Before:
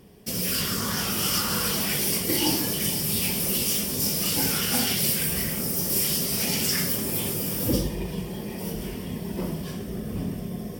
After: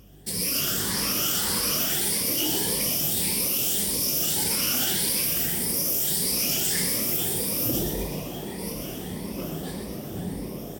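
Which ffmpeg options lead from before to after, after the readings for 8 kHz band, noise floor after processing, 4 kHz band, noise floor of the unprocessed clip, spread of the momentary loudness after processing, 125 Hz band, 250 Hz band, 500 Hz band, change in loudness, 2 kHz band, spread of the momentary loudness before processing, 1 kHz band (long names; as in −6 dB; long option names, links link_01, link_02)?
+2.0 dB, −36 dBFS, 0.0 dB, −35 dBFS, 12 LU, −4.0 dB, −3.0 dB, −1.0 dB, +1.0 dB, −1.5 dB, 11 LU, −2.0 dB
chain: -filter_complex "[0:a]afftfilt=real='re*pow(10,10/40*sin(2*PI*(0.89*log(max(b,1)*sr/1024/100)/log(2)-(1.7)*(pts-256)/sr)))':imag='im*pow(10,10/40*sin(2*PI*(0.89*log(max(b,1)*sr/1024/100)/log(2)-(1.7)*(pts-256)/sr)))':win_size=1024:overlap=0.75,equalizer=frequency=11000:width_type=o:width=2.8:gain=5.5,alimiter=limit=-12dB:level=0:latency=1:release=25,aeval=exprs='val(0)+0.00447*(sin(2*PI*50*n/s)+sin(2*PI*2*50*n/s)/2+sin(2*PI*3*50*n/s)/3+sin(2*PI*4*50*n/s)/4+sin(2*PI*5*50*n/s)/5)':channel_layout=same,asplit=9[link_01][link_02][link_03][link_04][link_05][link_06][link_07][link_08][link_09];[link_02]adelay=123,afreqshift=100,volume=-6dB[link_10];[link_03]adelay=246,afreqshift=200,volume=-10.4dB[link_11];[link_04]adelay=369,afreqshift=300,volume=-14.9dB[link_12];[link_05]adelay=492,afreqshift=400,volume=-19.3dB[link_13];[link_06]adelay=615,afreqshift=500,volume=-23.7dB[link_14];[link_07]adelay=738,afreqshift=600,volume=-28.2dB[link_15];[link_08]adelay=861,afreqshift=700,volume=-32.6dB[link_16];[link_09]adelay=984,afreqshift=800,volume=-37.1dB[link_17];[link_01][link_10][link_11][link_12][link_13][link_14][link_15][link_16][link_17]amix=inputs=9:normalize=0,volume=-4.5dB"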